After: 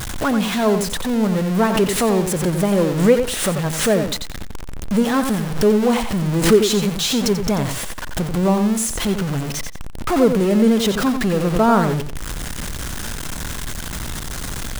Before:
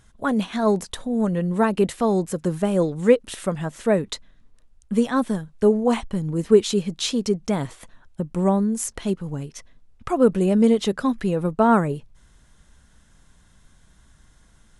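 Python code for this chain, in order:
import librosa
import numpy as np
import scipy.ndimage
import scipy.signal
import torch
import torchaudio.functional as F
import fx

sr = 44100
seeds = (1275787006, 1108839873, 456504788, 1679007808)

y = x + 0.5 * 10.0 ** (-21.5 / 20.0) * np.sign(x)
y = fx.echo_feedback(y, sr, ms=89, feedback_pct=19, wet_db=-7.5)
y = fx.pre_swell(y, sr, db_per_s=82.0)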